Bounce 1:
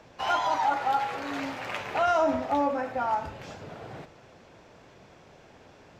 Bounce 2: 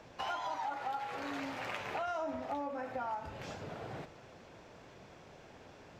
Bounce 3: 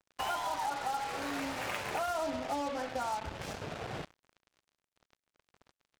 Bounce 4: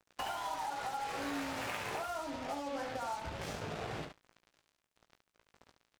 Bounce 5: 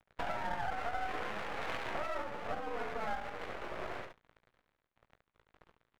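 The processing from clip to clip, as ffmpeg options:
-af "acompressor=threshold=-35dB:ratio=4,volume=-2dB"
-af "equalizer=f=61:t=o:w=0.35:g=10.5,acrusher=bits=6:mix=0:aa=0.5,volume=3dB"
-filter_complex "[0:a]acompressor=threshold=-39dB:ratio=6,asplit=2[a][b];[b]aecho=0:1:18|71:0.447|0.447[c];[a][c]amix=inputs=2:normalize=0,volume=1.5dB"
-af "highpass=f=450:t=q:w=0.5412,highpass=f=450:t=q:w=1.307,lowpass=f=2.4k:t=q:w=0.5176,lowpass=f=2.4k:t=q:w=0.7071,lowpass=f=2.4k:t=q:w=1.932,afreqshift=-73,aeval=exprs='max(val(0),0)':c=same,volume=6dB"

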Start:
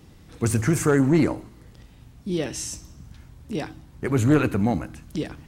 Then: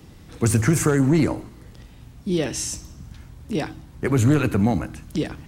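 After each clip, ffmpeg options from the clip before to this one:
-filter_complex "[0:a]acrossover=split=160|3000[a][b][c];[b]acompressor=threshold=-21dB:ratio=6[d];[a][d][c]amix=inputs=3:normalize=0,volume=4dB"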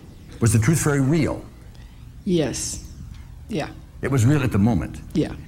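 -af "aphaser=in_gain=1:out_gain=1:delay=1.9:decay=0.33:speed=0.39:type=triangular"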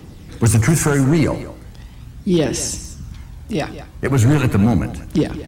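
-af "volume=12.5dB,asoftclip=hard,volume=-12.5dB,aecho=1:1:188:0.2,volume=4.5dB"

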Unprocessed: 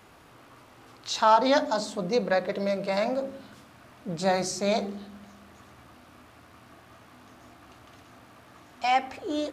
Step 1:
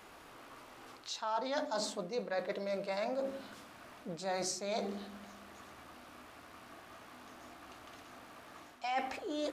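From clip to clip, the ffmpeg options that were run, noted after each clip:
-af "areverse,acompressor=threshold=-32dB:ratio=10,areverse,equalizer=f=110:t=o:w=1.7:g=-10.5"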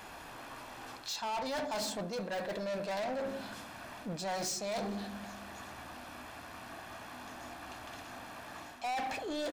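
-filter_complex "[0:a]asplit=2[a][b];[b]aeval=exprs='(mod(25.1*val(0)+1,2)-1)/25.1':c=same,volume=-11dB[c];[a][c]amix=inputs=2:normalize=0,aecho=1:1:1.2:0.37,asoftclip=type=tanh:threshold=-37.5dB,volume=4.5dB"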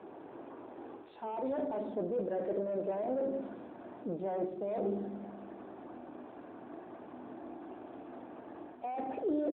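-filter_complex "[0:a]bandpass=f=370:t=q:w=2.7:csg=0,asplit=2[a][b];[b]adelay=105,volume=-15dB,highshelf=f=4k:g=-2.36[c];[a][c]amix=inputs=2:normalize=0,volume=11dB" -ar 8000 -c:a libopencore_amrnb -b:a 12200

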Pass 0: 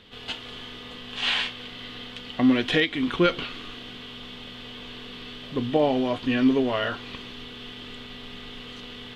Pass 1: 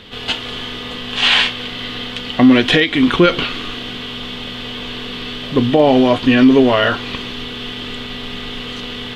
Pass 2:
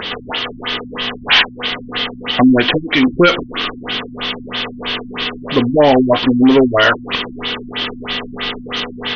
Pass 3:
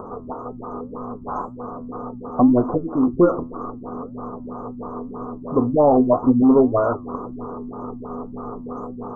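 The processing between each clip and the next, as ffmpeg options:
-af "alimiter=level_in=14dB:limit=-1dB:release=50:level=0:latency=1,volume=-1dB"
-filter_complex "[0:a]acompressor=mode=upward:threshold=-21dB:ratio=2.5,asplit=2[a][b];[b]highpass=f=720:p=1,volume=15dB,asoftclip=type=tanh:threshold=-1.5dB[c];[a][c]amix=inputs=2:normalize=0,lowpass=f=4.7k:p=1,volume=-6dB,afftfilt=real='re*lt(b*sr/1024,280*pow(6600/280,0.5+0.5*sin(2*PI*3.1*pts/sr)))':imag='im*lt(b*sr/1024,280*pow(6600/280,0.5+0.5*sin(2*PI*3.1*pts/sr)))':win_size=1024:overlap=0.75"
-af "flanger=delay=7.7:depth=4.7:regen=73:speed=1.9:shape=sinusoidal,asuperstop=centerf=3100:order=20:qfactor=0.52"

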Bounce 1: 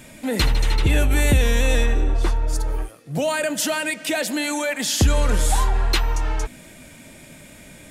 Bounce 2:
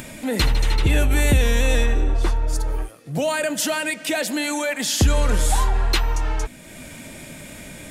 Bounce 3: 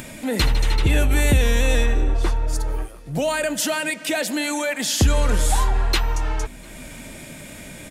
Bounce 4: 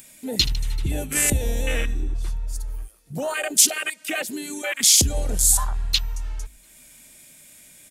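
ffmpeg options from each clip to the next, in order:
-af "acompressor=mode=upward:threshold=-30dB:ratio=2.5"
-filter_complex "[0:a]asplit=2[a][b];[b]adelay=699.7,volume=-24dB,highshelf=f=4k:g=-15.7[c];[a][c]amix=inputs=2:normalize=0"
-af "crystalizer=i=6.5:c=0,afwtdn=0.158,bandreject=f=50:t=h:w=6,bandreject=f=100:t=h:w=6,volume=-5.5dB"

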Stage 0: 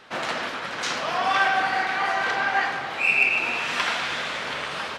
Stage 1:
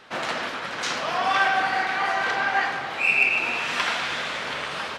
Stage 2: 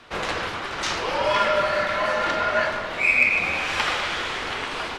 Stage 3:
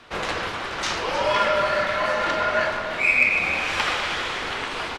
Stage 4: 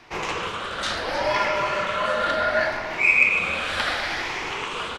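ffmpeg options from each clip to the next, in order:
-af anull
-af "bandreject=f=52.1:t=h:w=4,bandreject=f=104.2:t=h:w=4,bandreject=f=156.3:t=h:w=4,bandreject=f=208.4:t=h:w=4,bandreject=f=260.5:t=h:w=4,bandreject=f=312.6:t=h:w=4,bandreject=f=364.7:t=h:w=4,bandreject=f=416.8:t=h:w=4,bandreject=f=468.9:t=h:w=4,bandreject=f=521:t=h:w=4,bandreject=f=573.1:t=h:w=4,bandreject=f=625.2:t=h:w=4,bandreject=f=677.3:t=h:w=4,bandreject=f=729.4:t=h:w=4,bandreject=f=781.5:t=h:w=4,bandreject=f=833.6:t=h:w=4,bandreject=f=885.7:t=h:w=4,bandreject=f=937.8:t=h:w=4,bandreject=f=989.9:t=h:w=4,bandreject=f=1.042k:t=h:w=4,bandreject=f=1.0941k:t=h:w=4,bandreject=f=1.1462k:t=h:w=4,bandreject=f=1.1983k:t=h:w=4,bandreject=f=1.2504k:t=h:w=4,bandreject=f=1.3025k:t=h:w=4,bandreject=f=1.3546k:t=h:w=4,bandreject=f=1.4067k:t=h:w=4,bandreject=f=1.4588k:t=h:w=4,bandreject=f=1.5109k:t=h:w=4,bandreject=f=1.563k:t=h:w=4,bandreject=f=1.6151k:t=h:w=4,bandreject=f=1.6672k:t=h:w=4,bandreject=f=1.7193k:t=h:w=4,bandreject=f=1.7714k:t=h:w=4,bandreject=f=1.8235k:t=h:w=4,bandreject=f=1.8756k:t=h:w=4,bandreject=f=1.9277k:t=h:w=4,bandreject=f=1.9798k:t=h:w=4,afreqshift=-160,volume=1.5dB"
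-af "aecho=1:1:311:0.237"
-af "afftfilt=real='re*pow(10,7/40*sin(2*PI*(0.74*log(max(b,1)*sr/1024/100)/log(2)-(0.7)*(pts-256)/sr)))':imag='im*pow(10,7/40*sin(2*PI*(0.74*log(max(b,1)*sr/1024/100)/log(2)-(0.7)*(pts-256)/sr)))':win_size=1024:overlap=0.75,volume=-1.5dB"

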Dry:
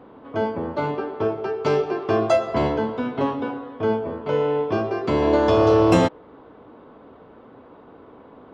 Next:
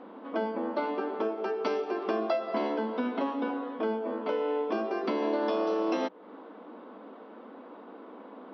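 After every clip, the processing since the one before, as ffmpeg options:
-af "acompressor=threshold=-27dB:ratio=4,bandreject=f=410:w=12,afftfilt=real='re*between(b*sr/4096,190,6000)':imag='im*between(b*sr/4096,190,6000)':win_size=4096:overlap=0.75"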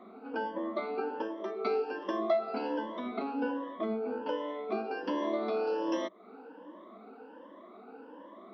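-af "afftfilt=real='re*pow(10,19/40*sin(2*PI*(1.2*log(max(b,1)*sr/1024/100)/log(2)-(1.3)*(pts-256)/sr)))':imag='im*pow(10,19/40*sin(2*PI*(1.2*log(max(b,1)*sr/1024/100)/log(2)-(1.3)*(pts-256)/sr)))':win_size=1024:overlap=0.75,volume=-7dB"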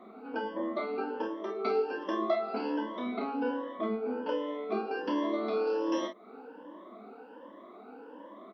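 -af "aecho=1:1:28|48:0.531|0.355"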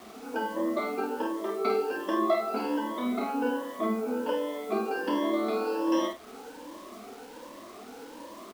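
-filter_complex "[0:a]acrusher=bits=8:mix=0:aa=0.000001,asplit=2[a][b];[b]adelay=49,volume=-6dB[c];[a][c]amix=inputs=2:normalize=0,volume=3dB"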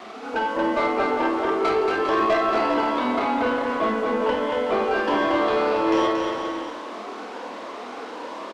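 -filter_complex "[0:a]adynamicsmooth=sensitivity=2.5:basefreq=5k,asplit=2[a][b];[b]highpass=f=720:p=1,volume=18dB,asoftclip=type=tanh:threshold=-14dB[c];[a][c]amix=inputs=2:normalize=0,lowpass=f=4.9k:p=1,volume=-6dB,aecho=1:1:230|402.5|531.9|628.9|701.7:0.631|0.398|0.251|0.158|0.1"

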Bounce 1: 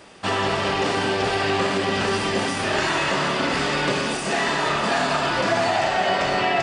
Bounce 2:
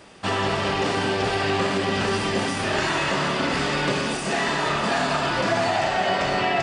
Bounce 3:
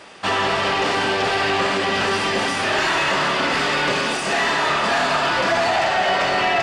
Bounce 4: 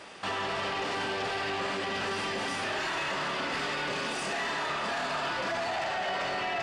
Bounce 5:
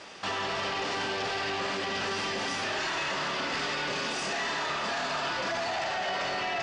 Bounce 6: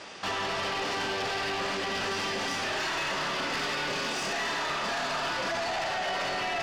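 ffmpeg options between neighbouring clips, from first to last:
-af "bass=f=250:g=3,treble=f=4k:g=0,volume=-1.5dB"
-filter_complex "[0:a]asplit=2[a][b];[b]highpass=f=720:p=1,volume=13dB,asoftclip=type=tanh:threshold=-10dB[c];[a][c]amix=inputs=2:normalize=0,lowpass=f=4.9k:p=1,volume=-6dB"
-af "alimiter=limit=-21dB:level=0:latency=1,volume=-4.5dB"
-af "lowpass=f=6.2k:t=q:w=1.7"
-af "aeval=exprs='0.0708*(cos(1*acos(clip(val(0)/0.0708,-1,1)))-cos(1*PI/2))+0.0178*(cos(2*acos(clip(val(0)/0.0708,-1,1)))-cos(2*PI/2))+0.00501*(cos(4*acos(clip(val(0)/0.0708,-1,1)))-cos(4*PI/2))+0.00398*(cos(5*acos(clip(val(0)/0.0708,-1,1)))-cos(5*PI/2))':c=same"

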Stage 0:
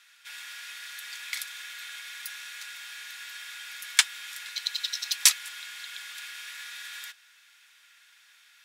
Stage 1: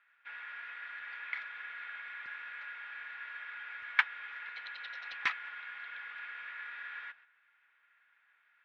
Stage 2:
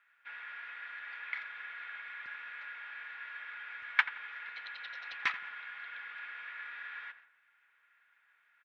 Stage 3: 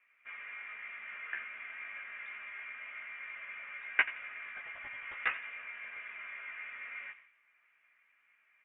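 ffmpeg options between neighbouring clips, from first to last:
-af "highpass=f=100:p=1,agate=range=-8dB:threshold=-55dB:ratio=16:detection=peak,lowpass=f=2k:w=0.5412,lowpass=f=2k:w=1.3066,volume=2dB"
-filter_complex "[0:a]asplit=2[a][b];[b]adelay=85,lowpass=f=1.7k:p=1,volume=-12.5dB,asplit=2[c][d];[d]adelay=85,lowpass=f=1.7k:p=1,volume=0.46,asplit=2[e][f];[f]adelay=85,lowpass=f=1.7k:p=1,volume=0.46,asplit=2[g][h];[h]adelay=85,lowpass=f=1.7k:p=1,volume=0.46,asplit=2[i][j];[j]adelay=85,lowpass=f=1.7k:p=1,volume=0.46[k];[a][c][e][g][i][k]amix=inputs=6:normalize=0"
-af "flanger=delay=15:depth=3.2:speed=0.78,lowpass=f=3.2k:t=q:w=0.5098,lowpass=f=3.2k:t=q:w=0.6013,lowpass=f=3.2k:t=q:w=0.9,lowpass=f=3.2k:t=q:w=2.563,afreqshift=-3800,volume=2.5dB" -ar 48000 -c:a libopus -b:a 48k

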